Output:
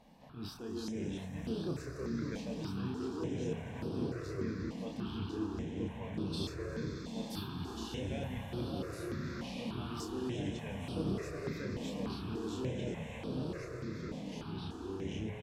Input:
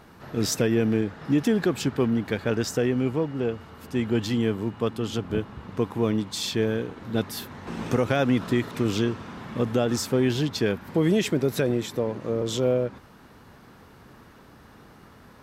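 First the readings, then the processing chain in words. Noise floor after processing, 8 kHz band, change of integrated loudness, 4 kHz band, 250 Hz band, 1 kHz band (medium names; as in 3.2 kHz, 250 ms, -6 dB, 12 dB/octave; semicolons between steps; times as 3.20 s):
-46 dBFS, -17.5 dB, -14.0 dB, -13.0 dB, -12.5 dB, -12.0 dB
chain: treble shelf 7.7 kHz -11 dB; reverse; compression, threshold -29 dBFS, peak gain reduction 11.5 dB; reverse; echo with a slow build-up 90 ms, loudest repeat 8, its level -15.5 dB; ever faster or slower copies 241 ms, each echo -3 st, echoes 3; doubling 31 ms -3.5 dB; repeats whose band climbs or falls 581 ms, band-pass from 810 Hz, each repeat 0.7 oct, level -4 dB; stepped phaser 3.4 Hz 370–6900 Hz; trim -8.5 dB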